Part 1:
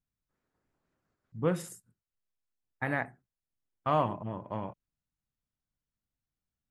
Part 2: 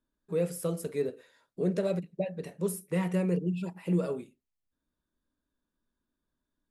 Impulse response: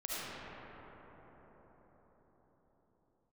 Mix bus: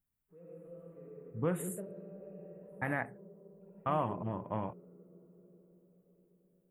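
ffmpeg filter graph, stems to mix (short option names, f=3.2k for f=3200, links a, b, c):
-filter_complex "[0:a]highshelf=f=10k:g=10.5,volume=0dB,asplit=2[a][b];[1:a]lowpass=f=1k:p=1,volume=-14dB,asplit=3[c][d][e];[c]atrim=end=2.87,asetpts=PTS-STARTPTS,afade=t=out:st=2.866:d=0.004:c=hsin[f];[d]atrim=start=2.87:end=3.61,asetpts=PTS-STARTPTS,volume=0[g];[e]atrim=start=3.61,asetpts=PTS-STARTPTS,afade=t=in:d=0.004:c=hsin[h];[f][g][h]concat=n=3:v=0:a=1,asplit=2[i][j];[j]volume=-9.5dB[k];[b]apad=whole_len=295864[l];[i][l]sidechaingate=range=-33dB:threshold=-53dB:ratio=16:detection=peak[m];[2:a]atrim=start_sample=2205[n];[k][n]afir=irnorm=-1:irlink=0[o];[a][m][o]amix=inputs=3:normalize=0,asuperstop=centerf=5300:order=4:qfactor=1.3,equalizer=f=4.2k:t=o:w=0.69:g=-9.5,alimiter=limit=-21dB:level=0:latency=1:release=219"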